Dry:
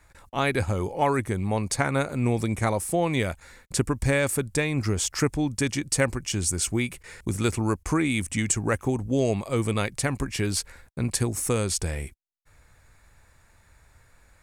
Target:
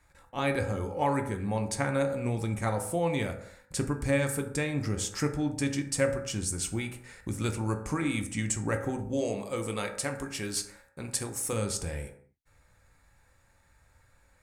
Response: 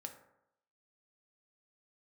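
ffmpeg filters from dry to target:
-filter_complex "[0:a]asettb=1/sr,asplit=3[s0][s1][s2];[s0]atrim=end=9.134[s3];[s1]atrim=start=9.13:end=11.53,asetpts=PTS-STARTPTS,afade=t=in:d=0.004:c=qsin,afade=t=out:st=2.396:d=0.004:c=qsin,bass=f=250:g=-8,treble=f=4000:g=3[s4];[s2]atrim=start=11.526[s5];[s3][s4]acrossfade=d=0.004:c1=hsin:c2=qsin[s6];[s6][s5]acrossfade=d=0.004:c1=qsin:c2=hsin[s7];[1:a]atrim=start_sample=2205,afade=t=out:st=0.33:d=0.01,atrim=end_sample=14994[s8];[s7][s8]afir=irnorm=-1:irlink=0,volume=0.841"

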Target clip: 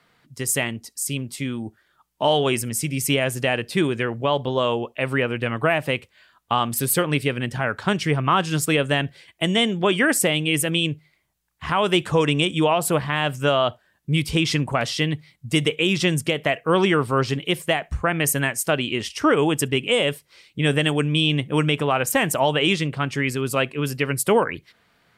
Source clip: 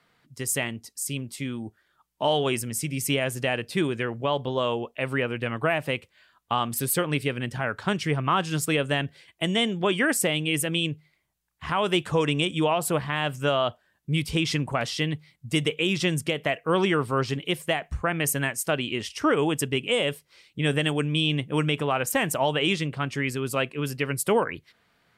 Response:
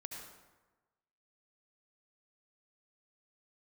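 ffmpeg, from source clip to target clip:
-filter_complex "[0:a]asplit=2[s0][s1];[1:a]atrim=start_sample=2205,atrim=end_sample=3087[s2];[s1][s2]afir=irnorm=-1:irlink=0,volume=0.299[s3];[s0][s3]amix=inputs=2:normalize=0,volume=1.41"

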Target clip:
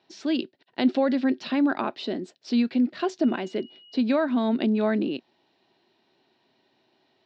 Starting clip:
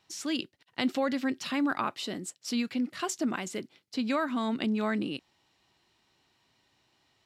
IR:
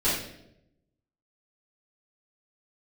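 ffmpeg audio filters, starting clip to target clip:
-filter_complex "[0:a]asettb=1/sr,asplit=3[s0][s1][s2];[s0]atrim=end=3.244[s3];[s1]atrim=start=3.24:end=3.99,asetpts=PTS-STARTPTS,afade=t=in:d=0.004:c=qsin,afade=t=out:st=0.746:d=0.004:c=qsin,aeval=exprs='val(0)+0.00355*sin(2*PI*2900*n/s)':c=same[s4];[s2]atrim=start=3.986[s5];[s3][s4]acrossfade=d=0.004:c1=hsin:c2=qsin[s6];[s6][s5]acrossfade=d=0.004:c1=qsin:c2=hsin,highpass=180,equalizer=f=240:t=q:w=4:g=5,equalizer=f=380:t=q:w=4:g=7,equalizer=f=640:t=q:w=4:g=5,equalizer=f=1200:t=q:w=4:g=-7,equalizer=f=2100:t=q:w=4:g=-5,equalizer=f=3000:t=q:w=4:g=-4,lowpass=f=4300:w=0.5412,lowpass=f=4300:w=1.3066,volume=1.58"

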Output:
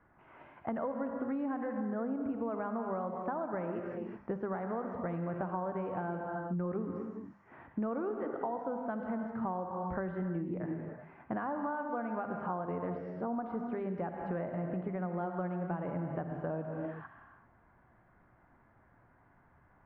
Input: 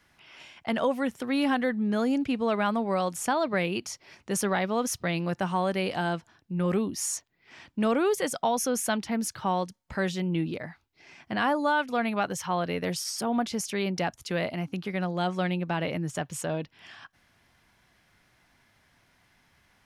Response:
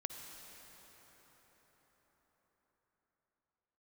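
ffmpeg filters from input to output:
-filter_complex "[0:a]bandreject=f=50:t=h:w=6,bandreject=f=100:t=h:w=6,bandreject=f=150:t=h:w=6,bandreject=f=200:t=h:w=6,bandreject=f=250:t=h:w=6[s0];[1:a]atrim=start_sample=2205,afade=t=out:st=0.44:d=0.01,atrim=end_sample=19845[s1];[s0][s1]afir=irnorm=-1:irlink=0,acompressor=threshold=0.0141:ratio=12,lowpass=f=1400:w=0.5412,lowpass=f=1400:w=1.3066,volume=1.78"

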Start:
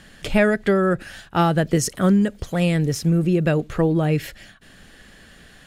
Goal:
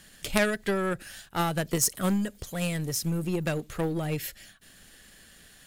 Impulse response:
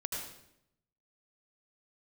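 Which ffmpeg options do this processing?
-af "aeval=exprs='if(lt(val(0),0),0.708*val(0),val(0))':c=same,aeval=exprs='0.631*(cos(1*acos(clip(val(0)/0.631,-1,1)))-cos(1*PI/2))+0.316*(cos(2*acos(clip(val(0)/0.631,-1,1)))-cos(2*PI/2))+0.158*(cos(4*acos(clip(val(0)/0.631,-1,1)))-cos(4*PI/2))+0.01*(cos(7*acos(clip(val(0)/0.631,-1,1)))-cos(7*PI/2))+0.0224*(cos(8*acos(clip(val(0)/0.631,-1,1)))-cos(8*PI/2))':c=same,aemphasis=mode=production:type=75kf,volume=0.422"

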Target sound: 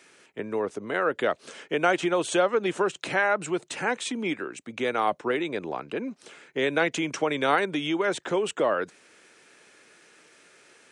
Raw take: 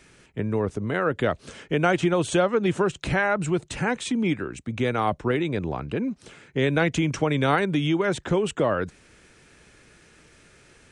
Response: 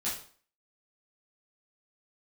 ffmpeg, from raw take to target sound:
-af "highpass=350"

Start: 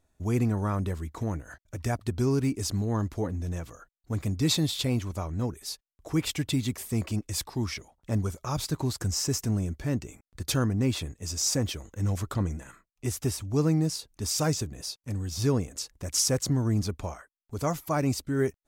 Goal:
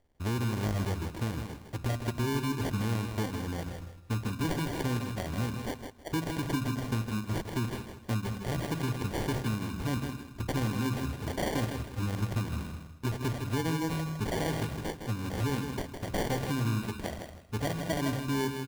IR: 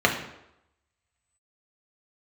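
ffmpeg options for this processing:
-filter_complex "[0:a]asplit=2[s0][s1];[s1]asubboost=boost=8.5:cutoff=230[s2];[1:a]atrim=start_sample=2205,lowshelf=f=360:g=-9[s3];[s2][s3]afir=irnorm=-1:irlink=0,volume=0.0473[s4];[s0][s4]amix=inputs=2:normalize=0,acrusher=samples=34:mix=1:aa=0.000001,acompressor=threshold=0.0398:ratio=6,aecho=1:1:159|318|477:0.447|0.0893|0.0179"

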